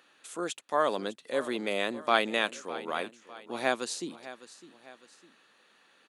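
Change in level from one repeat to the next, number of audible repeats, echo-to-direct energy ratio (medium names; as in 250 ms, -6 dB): -7.0 dB, 2, -15.5 dB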